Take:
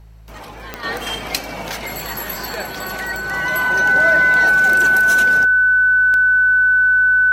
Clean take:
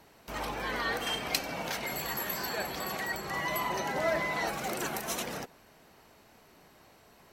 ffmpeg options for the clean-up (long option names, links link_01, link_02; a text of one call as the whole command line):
ffmpeg -i in.wav -af "adeclick=threshold=4,bandreject=frequency=54.1:width_type=h:width=4,bandreject=frequency=108.2:width_type=h:width=4,bandreject=frequency=162.3:width_type=h:width=4,bandreject=frequency=1500:width=30,asetnsamples=nb_out_samples=441:pad=0,asendcmd='0.83 volume volume -8dB',volume=0dB" out.wav